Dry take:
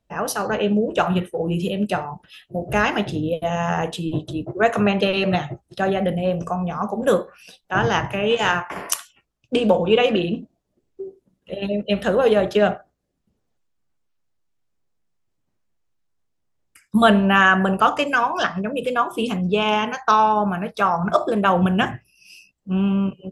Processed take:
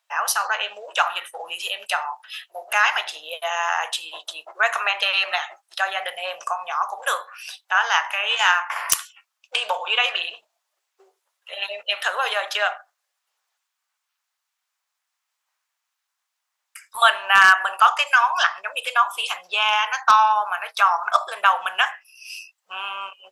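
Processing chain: inverse Chebyshev high-pass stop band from 270 Hz, stop band 60 dB; in parallel at +1.5 dB: compression 12:1, threshold -33 dBFS, peak gain reduction 22.5 dB; on the sum: wavefolder -5.5 dBFS; trim +2.5 dB

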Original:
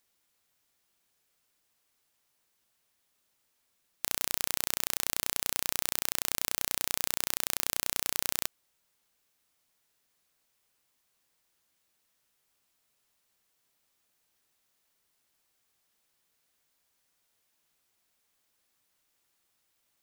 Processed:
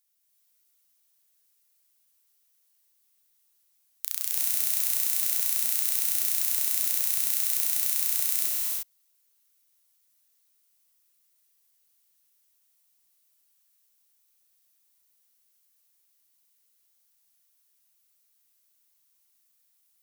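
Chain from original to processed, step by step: pre-emphasis filter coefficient 0.8; band-stop 7.6 kHz, Q 29; gated-style reverb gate 380 ms rising, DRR -4.5 dB; trim -1 dB

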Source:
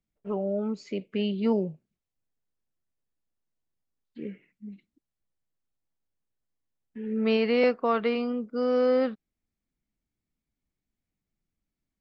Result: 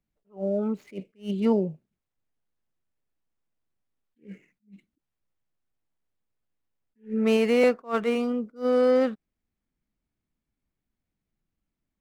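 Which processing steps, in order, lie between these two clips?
median filter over 9 samples; attacks held to a fixed rise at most 250 dB/s; trim +2.5 dB

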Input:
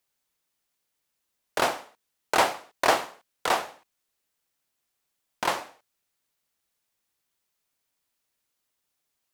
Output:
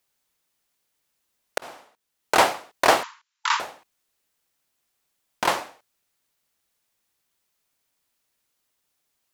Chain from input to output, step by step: 1.58–2.35 s: fade in; 3.03–3.60 s: brick-wall FIR band-pass 870–7500 Hz; trim +4 dB

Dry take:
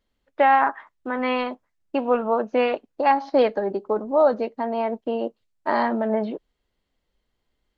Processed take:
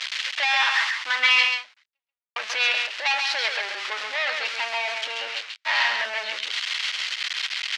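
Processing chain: jump at every zero crossing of -32 dBFS; 5.06–5.72 s: treble shelf 4 kHz -6.5 dB; saturation -11 dBFS, distortion -18 dB; overdrive pedal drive 26 dB, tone 3.7 kHz, clips at -2 dBFS; Butterworth band-pass 3.3 kHz, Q 0.89; 1.40–2.36 s: fade out exponential; delay 135 ms -5 dB

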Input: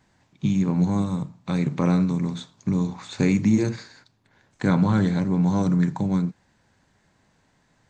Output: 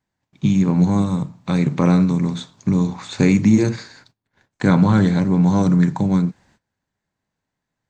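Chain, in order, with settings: gate -58 dBFS, range -22 dB; trim +5.5 dB

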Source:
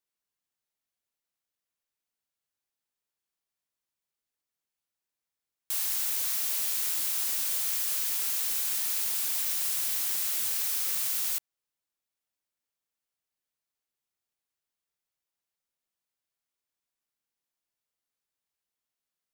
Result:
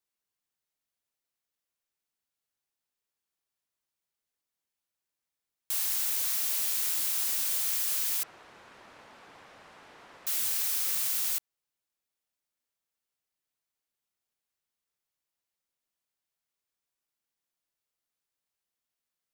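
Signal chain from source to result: 8.23–10.27 s: low-pass 1.1 kHz 12 dB/octave

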